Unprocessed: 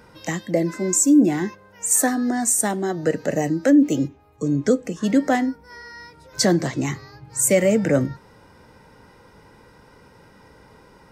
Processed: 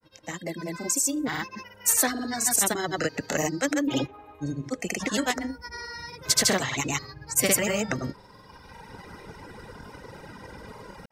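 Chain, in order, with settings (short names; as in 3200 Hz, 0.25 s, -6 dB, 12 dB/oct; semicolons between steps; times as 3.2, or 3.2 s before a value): opening faded in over 1.76 s; spectral gain 3.83–4.45, 240–4100 Hz +10 dB; reverb removal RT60 1.4 s; grains 0.1 s, grains 20/s, pitch spread up and down by 0 st; spectral compressor 2:1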